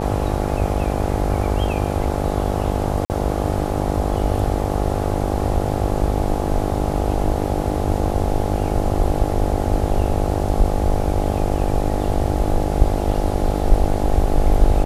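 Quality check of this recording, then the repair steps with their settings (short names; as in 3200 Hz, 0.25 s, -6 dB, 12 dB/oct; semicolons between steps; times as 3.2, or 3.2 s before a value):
buzz 50 Hz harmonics 17 -23 dBFS
3.05–3.1 gap 49 ms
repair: de-hum 50 Hz, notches 17; interpolate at 3.05, 49 ms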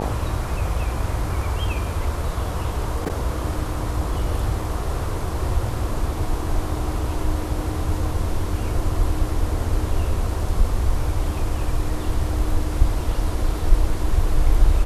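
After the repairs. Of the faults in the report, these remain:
none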